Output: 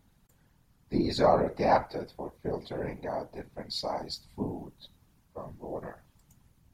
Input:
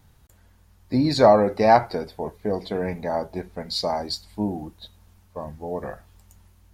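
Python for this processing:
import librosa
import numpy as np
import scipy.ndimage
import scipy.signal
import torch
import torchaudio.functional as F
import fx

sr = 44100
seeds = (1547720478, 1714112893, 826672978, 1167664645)

y = fx.whisperise(x, sr, seeds[0])
y = y * 10.0 ** (-8.0 / 20.0)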